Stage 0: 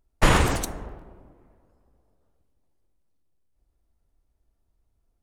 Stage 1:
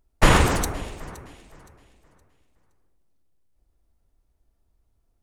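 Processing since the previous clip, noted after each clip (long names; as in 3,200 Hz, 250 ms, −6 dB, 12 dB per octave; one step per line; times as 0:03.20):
delay that swaps between a low-pass and a high-pass 259 ms, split 2,100 Hz, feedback 54%, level −13.5 dB
level +2.5 dB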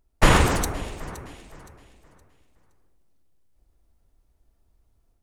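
automatic gain control gain up to 3.5 dB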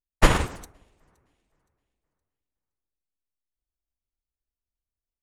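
expander for the loud parts 2.5 to 1, over −30 dBFS
level +2 dB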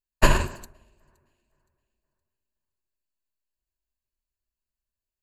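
EQ curve with evenly spaced ripples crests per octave 1.4, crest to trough 11 dB
level −2 dB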